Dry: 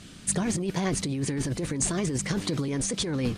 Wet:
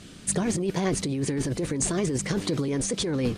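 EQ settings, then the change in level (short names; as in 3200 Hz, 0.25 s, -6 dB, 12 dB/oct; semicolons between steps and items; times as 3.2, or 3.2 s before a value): bell 430 Hz +4.5 dB 1.1 oct; 0.0 dB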